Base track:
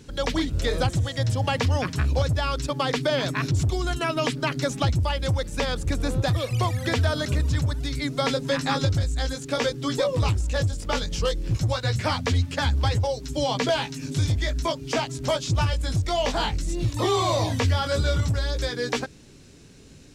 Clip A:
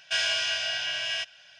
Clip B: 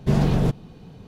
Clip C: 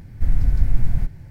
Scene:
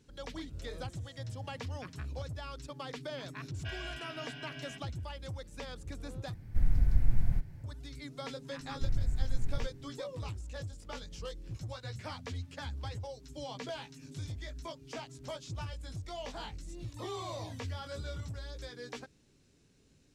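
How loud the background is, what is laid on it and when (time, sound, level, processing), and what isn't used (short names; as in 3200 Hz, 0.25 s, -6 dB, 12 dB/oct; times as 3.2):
base track -17.5 dB
3.54 add A -8.5 dB + tape spacing loss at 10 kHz 36 dB
6.34 replace with C -8.5 dB
8.6 add C -14 dB
not used: B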